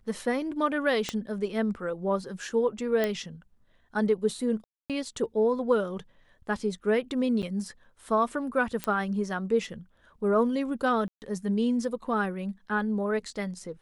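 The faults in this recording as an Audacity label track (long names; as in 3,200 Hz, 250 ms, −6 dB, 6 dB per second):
1.090000	1.090000	click −15 dBFS
3.040000	3.040000	click −14 dBFS
4.640000	4.900000	drop-out 257 ms
7.420000	7.430000	drop-out 8.2 ms
8.840000	8.840000	click −14 dBFS
11.080000	11.220000	drop-out 139 ms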